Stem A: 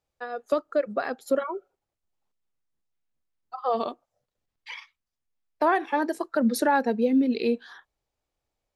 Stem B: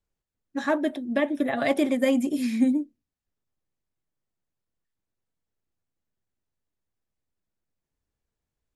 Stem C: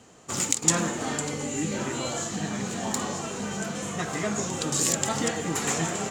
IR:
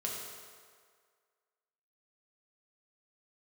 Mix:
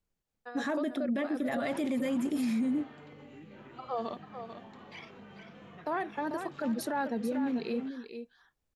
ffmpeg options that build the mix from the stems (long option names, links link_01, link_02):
-filter_complex "[0:a]adelay=250,volume=-9dB,asplit=2[link_01][link_02];[link_02]volume=-9dB[link_03];[1:a]volume=-1dB,asplit=2[link_04][link_05];[2:a]lowpass=frequency=3300:width=0.5412,lowpass=frequency=3300:width=1.3066,acompressor=threshold=-39dB:ratio=6,adelay=1350,volume=-6dB,asplit=2[link_06][link_07];[link_07]volume=-3.5dB[link_08];[link_05]apad=whole_len=328921[link_09];[link_06][link_09]sidechaingate=range=-33dB:threshold=-28dB:ratio=16:detection=peak[link_10];[link_01][link_04]amix=inputs=2:normalize=0,equalizer=frequency=200:width=1.8:gain=4.5,acompressor=threshold=-25dB:ratio=4,volume=0dB[link_11];[link_03][link_08]amix=inputs=2:normalize=0,aecho=0:1:442:1[link_12];[link_10][link_11][link_12]amix=inputs=3:normalize=0,alimiter=level_in=0.5dB:limit=-24dB:level=0:latency=1:release=13,volume=-0.5dB"